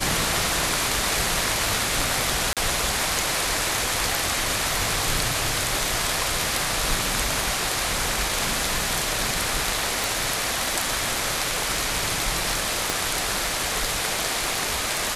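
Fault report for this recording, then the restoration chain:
surface crackle 54 per second −32 dBFS
0:02.53–0:02.57: drop-out 37 ms
0:10.04: click
0:12.90: click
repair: click removal
repair the gap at 0:02.53, 37 ms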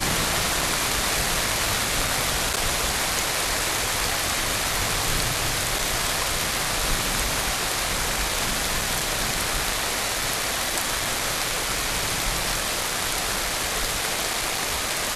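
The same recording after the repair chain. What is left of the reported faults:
0:12.90: click

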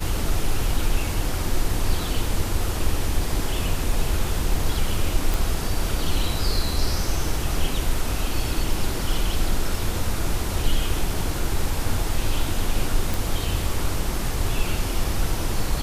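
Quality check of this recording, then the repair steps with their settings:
0:05.34: click
0:13.14: click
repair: click removal

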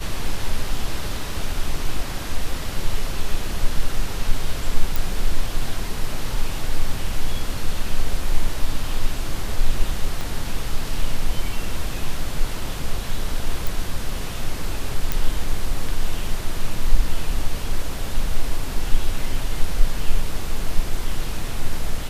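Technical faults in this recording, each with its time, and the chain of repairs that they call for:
0:04.96: click
0:10.21: click
0:13.67: click
0:15.12: click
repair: click removal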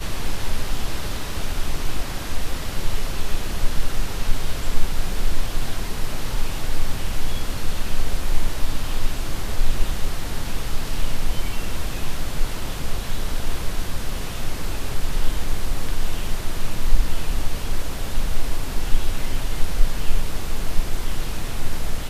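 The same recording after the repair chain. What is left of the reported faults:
0:10.21: click

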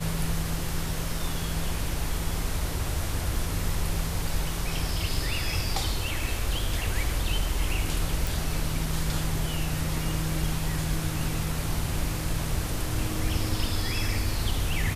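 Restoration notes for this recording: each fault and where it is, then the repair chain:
0:08.27: click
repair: click removal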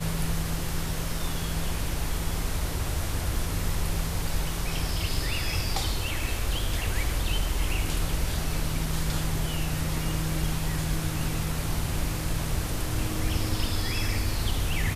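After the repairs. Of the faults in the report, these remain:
none of them is left

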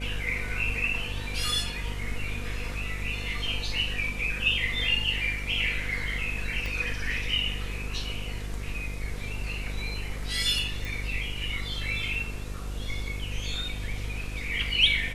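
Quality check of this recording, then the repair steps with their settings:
mains buzz 50 Hz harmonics 12 −35 dBFS
0:06.66: click −21 dBFS
0:10.85: click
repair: click removal
hum removal 50 Hz, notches 12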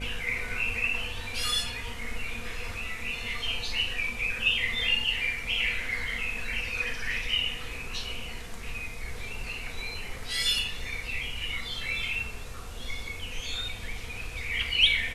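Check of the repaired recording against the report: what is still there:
0:06.66: click

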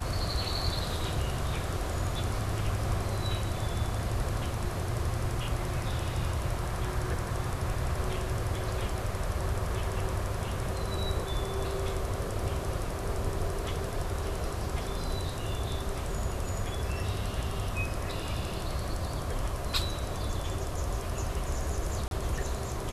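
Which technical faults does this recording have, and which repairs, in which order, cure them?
0:22.08–0:22.11: drop-out 32 ms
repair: repair the gap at 0:22.08, 32 ms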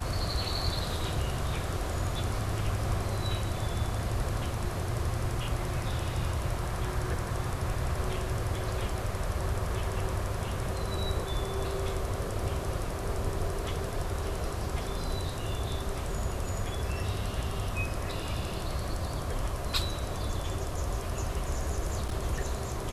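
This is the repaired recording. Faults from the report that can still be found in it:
none of them is left

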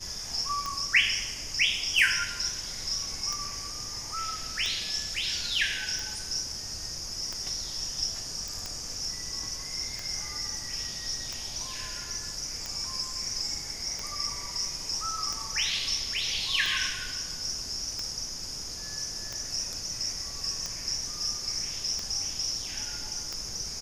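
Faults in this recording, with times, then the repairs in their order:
scratch tick 45 rpm −19 dBFS
0:08.48: click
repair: click removal

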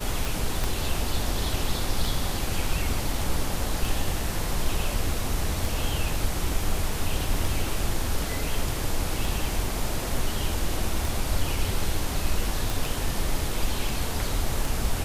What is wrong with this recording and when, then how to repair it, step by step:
scratch tick 33 1/3 rpm
0:00.64: click
0:12.70: click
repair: click removal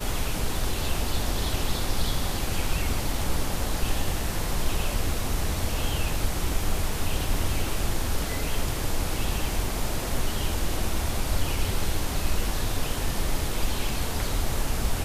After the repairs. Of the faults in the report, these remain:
0:00.64: click

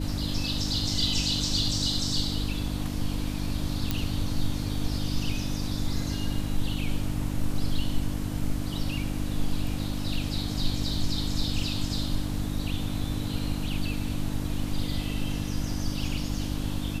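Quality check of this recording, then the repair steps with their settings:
mains hum 50 Hz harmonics 6 −32 dBFS
0:03.91: click −11 dBFS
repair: click removal
hum removal 50 Hz, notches 6

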